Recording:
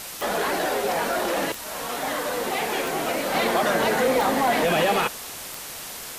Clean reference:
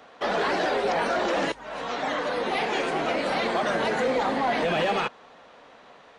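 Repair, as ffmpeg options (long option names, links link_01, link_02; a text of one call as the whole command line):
ffmpeg -i in.wav -af "adeclick=threshold=4,afwtdn=0.018,asetnsamples=nb_out_samples=441:pad=0,asendcmd='3.34 volume volume -3.5dB',volume=0dB" out.wav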